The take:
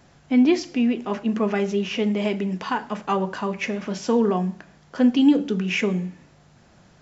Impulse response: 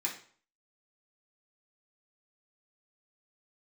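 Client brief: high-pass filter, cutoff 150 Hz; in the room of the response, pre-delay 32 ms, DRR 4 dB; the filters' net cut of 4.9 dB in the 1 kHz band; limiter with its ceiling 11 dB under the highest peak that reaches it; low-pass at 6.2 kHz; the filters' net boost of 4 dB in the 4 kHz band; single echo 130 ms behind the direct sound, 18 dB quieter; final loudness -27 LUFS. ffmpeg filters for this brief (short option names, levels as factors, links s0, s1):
-filter_complex "[0:a]highpass=150,lowpass=6200,equalizer=f=1000:t=o:g=-6.5,equalizer=f=4000:t=o:g=7.5,alimiter=limit=0.126:level=0:latency=1,aecho=1:1:130:0.126,asplit=2[s0][s1];[1:a]atrim=start_sample=2205,adelay=32[s2];[s1][s2]afir=irnorm=-1:irlink=0,volume=0.422[s3];[s0][s3]amix=inputs=2:normalize=0,volume=0.944"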